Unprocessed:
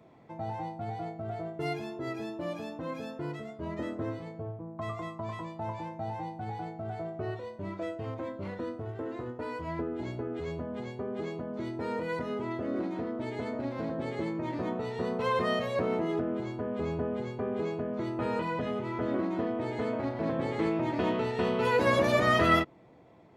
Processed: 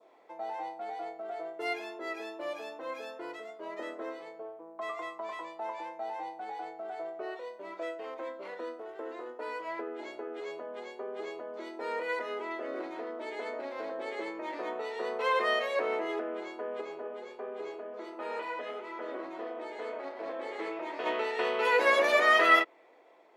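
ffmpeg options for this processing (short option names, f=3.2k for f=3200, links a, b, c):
-filter_complex "[0:a]asettb=1/sr,asplit=3[a][b][c];[a]atrim=end=16.814[d];[b]atrim=start=16.81:end=21.06,asetpts=PTS-STARTPTS,afade=t=in:d=0.004:c=qsin,afade=t=out:st=4.246:d=0.004:c=qsin,flanger=delay=3.2:depth=8.1:regen=-57:speed=1.4:shape=sinusoidal[e];[c]atrim=start=21.056[f];[d][e]acrossfade=d=0.004:c1=hsin:c2=qsin[g];[g][f]acrossfade=d=0.004:c1=qsin:c2=hsin,highpass=f=400:w=0.5412,highpass=f=400:w=1.3066,adynamicequalizer=threshold=0.00447:dfrequency=2100:dqfactor=1.3:tfrequency=2100:tqfactor=1.3:attack=5:release=100:ratio=0.375:range=3:mode=boostabove:tftype=bell"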